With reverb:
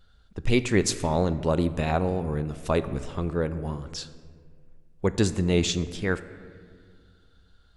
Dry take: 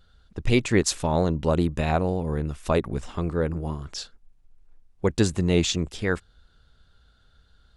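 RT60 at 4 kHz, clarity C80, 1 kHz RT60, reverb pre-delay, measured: 1.2 s, 15.0 dB, 1.7 s, 4 ms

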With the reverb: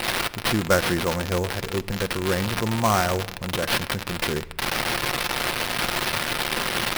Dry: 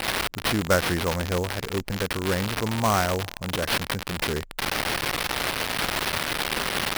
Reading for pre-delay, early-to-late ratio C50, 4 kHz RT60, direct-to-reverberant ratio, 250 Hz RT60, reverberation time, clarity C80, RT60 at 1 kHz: 6 ms, 18.0 dB, 0.60 s, 10.0 dB, 1.4 s, 0.95 s, 20.5 dB, 0.85 s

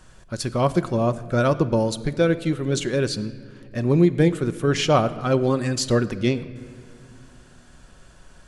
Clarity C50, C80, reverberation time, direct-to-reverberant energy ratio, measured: 15.5 dB, 16.0 dB, 2.1 s, 10.5 dB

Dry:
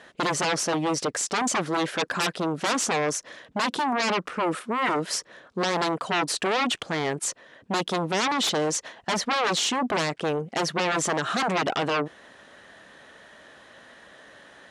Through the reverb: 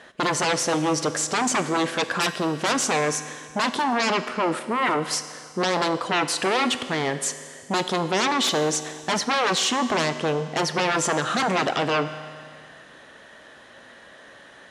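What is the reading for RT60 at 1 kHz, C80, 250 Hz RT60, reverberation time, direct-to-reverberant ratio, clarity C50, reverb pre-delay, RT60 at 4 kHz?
2.1 s, 12.0 dB, 2.1 s, 2.1 s, 10.0 dB, 11.5 dB, 8 ms, 2.1 s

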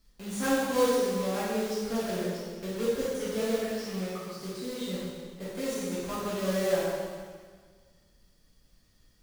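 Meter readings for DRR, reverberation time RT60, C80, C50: -9.5 dB, 1.6 s, 0.5 dB, -2.5 dB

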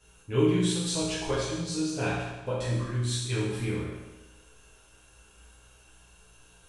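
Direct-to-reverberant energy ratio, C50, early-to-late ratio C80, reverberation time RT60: -10.0 dB, 0.0 dB, 2.5 dB, 1.1 s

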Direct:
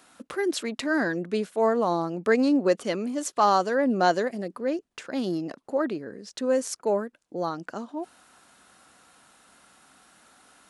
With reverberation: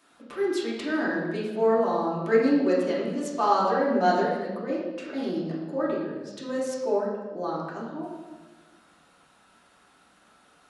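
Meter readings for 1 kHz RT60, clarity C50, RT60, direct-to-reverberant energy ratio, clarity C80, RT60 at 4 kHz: 1.2 s, 1.0 dB, 1.3 s, -7.5 dB, 3.5 dB, 1.1 s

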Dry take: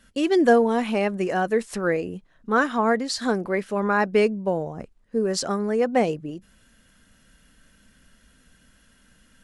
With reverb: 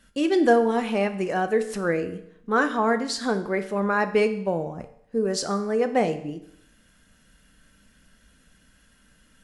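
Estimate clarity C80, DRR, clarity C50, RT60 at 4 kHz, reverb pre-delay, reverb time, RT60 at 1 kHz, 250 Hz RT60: 15.5 dB, 8.5 dB, 12.5 dB, 0.70 s, 7 ms, 0.70 s, 0.70 s, 0.70 s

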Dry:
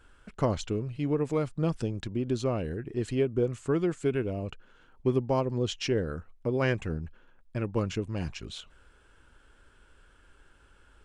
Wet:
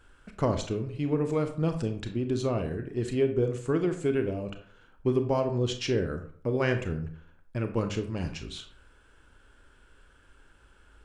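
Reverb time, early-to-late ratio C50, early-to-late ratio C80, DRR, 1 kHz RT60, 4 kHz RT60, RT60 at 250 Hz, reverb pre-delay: 0.50 s, 10.0 dB, 14.0 dB, 6.5 dB, 0.55 s, 0.30 s, 0.55 s, 27 ms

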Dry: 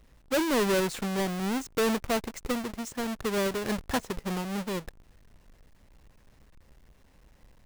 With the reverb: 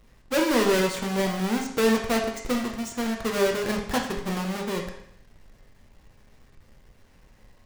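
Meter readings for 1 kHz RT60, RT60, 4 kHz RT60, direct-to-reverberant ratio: 0.70 s, 0.70 s, 0.70 s, 0.5 dB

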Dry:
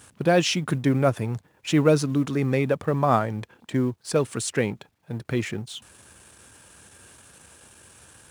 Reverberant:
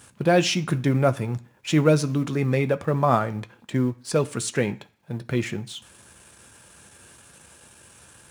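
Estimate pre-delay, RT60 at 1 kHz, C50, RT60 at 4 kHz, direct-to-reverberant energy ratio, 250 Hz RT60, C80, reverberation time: 3 ms, 0.50 s, 20.0 dB, 0.50 s, 8.5 dB, 0.45 s, 23.5 dB, 0.50 s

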